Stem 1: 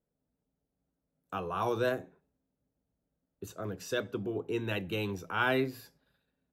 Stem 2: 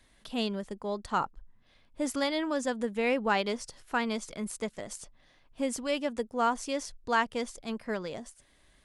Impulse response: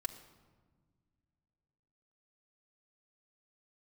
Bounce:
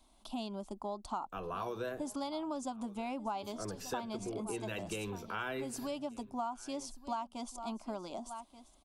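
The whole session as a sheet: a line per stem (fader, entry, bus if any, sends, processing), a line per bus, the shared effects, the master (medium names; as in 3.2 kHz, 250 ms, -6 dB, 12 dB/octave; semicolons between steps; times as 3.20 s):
-3.0 dB, 0.00 s, send -8 dB, echo send -22.5 dB, none
-1.5 dB, 0.00 s, no send, echo send -19.5 dB, peaking EQ 750 Hz +6 dB 1.5 oct; static phaser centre 480 Hz, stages 6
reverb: on, RT60 1.5 s, pre-delay 3 ms
echo: delay 1183 ms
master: compression 5:1, threshold -36 dBFS, peak gain reduction 13.5 dB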